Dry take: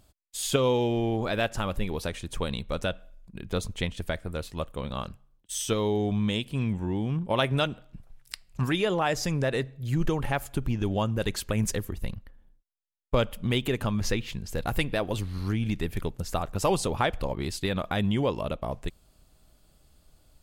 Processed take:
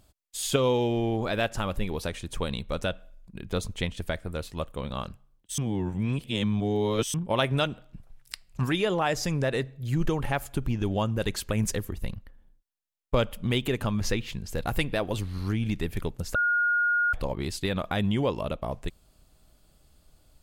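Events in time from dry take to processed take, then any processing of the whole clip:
5.58–7.14 reverse
16.35–17.13 bleep 1430 Hz -21 dBFS

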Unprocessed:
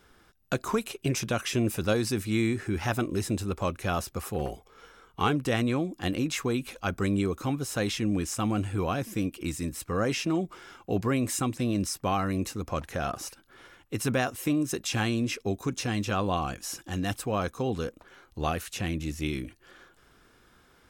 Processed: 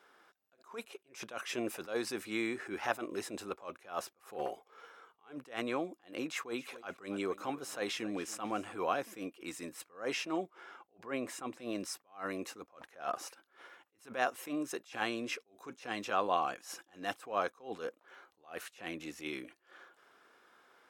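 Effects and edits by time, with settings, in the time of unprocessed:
6.27–8.74 feedback echo 0.276 s, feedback 39%, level -19.5 dB
10.5–11.58 high shelf 3500 Hz -8 dB
whole clip: HPF 530 Hz 12 dB/oct; high shelf 2900 Hz -11 dB; attack slew limiter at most 180 dB/s; gain +1 dB

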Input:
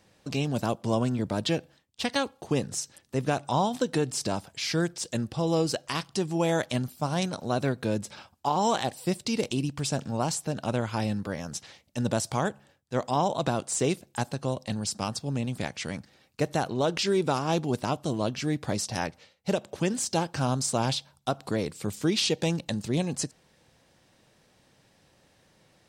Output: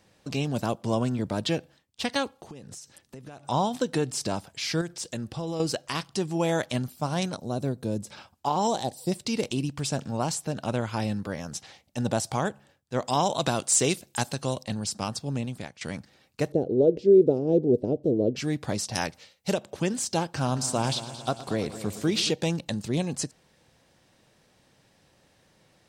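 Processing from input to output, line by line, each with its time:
2.31–3.47 compressor 12:1, threshold -39 dBFS
4.81–5.6 compressor 4:1, threshold -29 dBFS
7.37–8.07 bell 1900 Hz -13.5 dB 2.2 oct
8.67–9.12 band shelf 1800 Hz -11 dB
11.58–12.36 bell 770 Hz +7 dB 0.22 oct
13.07–14.63 high shelf 2100 Hz +9 dB
15.37–15.81 fade out linear, to -15.5 dB
16.52–18.36 EQ curve 180 Hz 0 dB, 470 Hz +12 dB, 1100 Hz -29 dB, 4100 Hz -22 dB, 8200 Hz -27 dB
18.95–19.54 high shelf 3000 Hz +8.5 dB
20.24–22.31 multi-head echo 0.112 s, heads first and second, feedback 62%, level -16.5 dB

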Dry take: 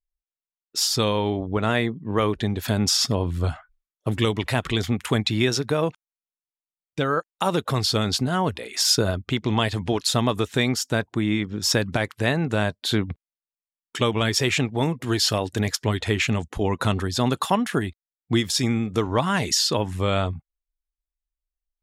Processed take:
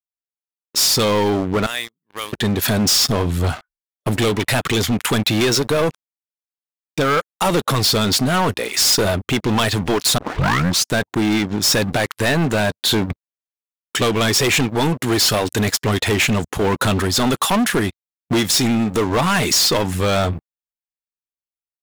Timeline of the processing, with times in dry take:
1.66–2.33 pre-emphasis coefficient 0.97
10.18 tape start 0.71 s
whole clip: HPF 150 Hz 6 dB/oct; high shelf 12000 Hz +11 dB; sample leveller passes 5; gain -6 dB

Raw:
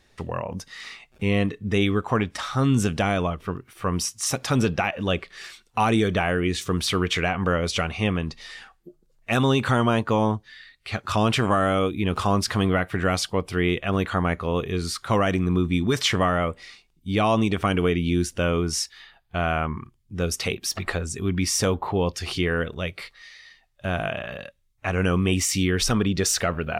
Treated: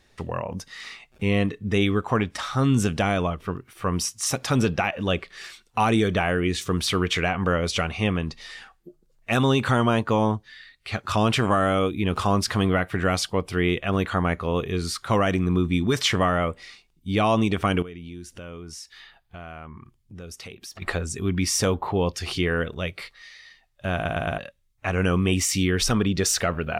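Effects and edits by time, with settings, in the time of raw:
17.82–20.82 compressor 3:1, threshold -41 dBFS
23.94 stutter in place 0.11 s, 4 plays

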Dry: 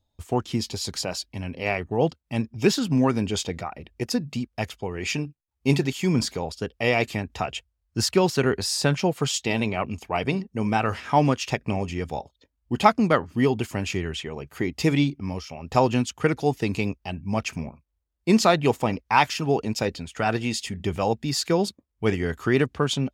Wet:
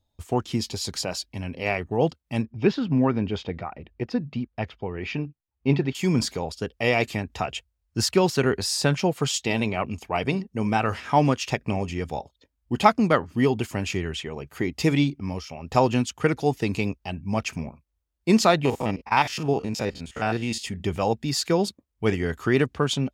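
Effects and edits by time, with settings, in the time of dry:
2.43–5.95 air absorption 290 m
18.65–20.64 stepped spectrum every 50 ms

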